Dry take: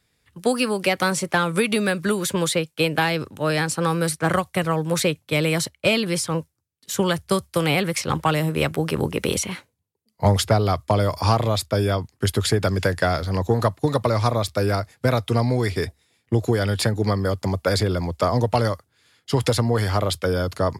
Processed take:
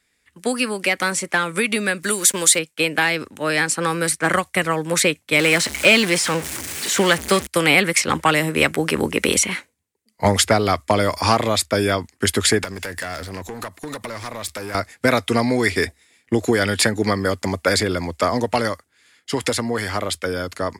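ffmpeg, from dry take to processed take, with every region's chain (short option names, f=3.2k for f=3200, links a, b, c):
-filter_complex "[0:a]asettb=1/sr,asplit=3[a][b][c];[a]atrim=end=2.034[d];[b]atrim=start=2.03:end=2.59,asetpts=PTS-STARTPTS,afade=t=in:d=0.004:c=qsin,afade=t=out:st=0.556:d=0.004:c=qsin,bass=f=250:g=-4,treble=f=4k:g=10,aeval=exprs='val(0)*gte(abs(val(0)),0.0158)':c=same[e];[c]atrim=start=2.586[f];[d][e]acrossfade=d=0.004:c1=hsin:c2=qsin[g];[g][f]acrossfade=d=0.004:c1=qsin:c2=hsin,asettb=1/sr,asplit=3[h][i][j];[h]atrim=end=5.394[k];[i]atrim=start=5.39:end=7.47,asetpts=PTS-STARTPTS,afade=t=in:d=0.004:c=qsin,afade=t=out:st=2.076:d=0.004:c=qsin,aeval=exprs='val(0)+0.5*0.0596*sgn(val(0))':c=same,acrossover=split=5200[l][m];[m]acompressor=threshold=-31dB:ratio=4:attack=1:release=60[n];[l][n]amix=inputs=2:normalize=0,highpass=f=150:p=1[o];[j]atrim=start=7.466[p];[k][o]acrossfade=d=0.004:c1=hsin:c2=qsin[q];[q][p]acrossfade=d=0.004:c1=qsin:c2=hsin,asettb=1/sr,asplit=3[r][s][t];[r]atrim=end=12.644[u];[s]atrim=start=12.64:end=14.75,asetpts=PTS-STARTPTS,afade=t=in:d=0.004:c=qsin,afade=t=out:st=2.106:d=0.004:c=qsin,acompressor=threshold=-27dB:ratio=10:attack=3.2:release=140:knee=1:detection=peak,asoftclip=type=hard:threshold=-28.5dB,highshelf=f=12k:g=10.5[v];[t]atrim=start=14.746[w];[u][v]acrossfade=d=0.004:c1=hsin:c2=qsin[x];[x][w]acrossfade=d=0.004:c1=qsin:c2=hsin,dynaudnorm=f=560:g=13:m=11.5dB,equalizer=f=125:t=o:w=1:g=-10,equalizer=f=250:t=o:w=1:g=5,equalizer=f=2k:t=o:w=1:g=9,equalizer=f=8k:t=o:w=1:g=8,volume=-3.5dB"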